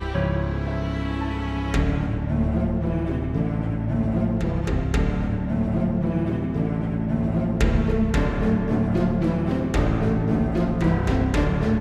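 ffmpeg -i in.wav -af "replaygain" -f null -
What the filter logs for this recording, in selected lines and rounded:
track_gain = +6.6 dB
track_peak = 0.325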